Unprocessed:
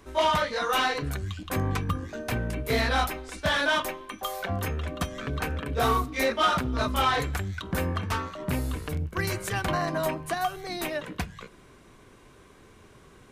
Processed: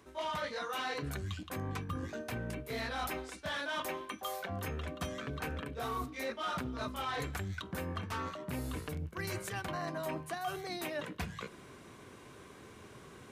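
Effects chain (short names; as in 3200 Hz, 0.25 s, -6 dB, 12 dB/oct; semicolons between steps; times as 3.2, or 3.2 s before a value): HPF 84 Hz 12 dB/oct; reverse; compressor 6:1, threshold -37 dBFS, peak gain reduction 17 dB; reverse; gain +1 dB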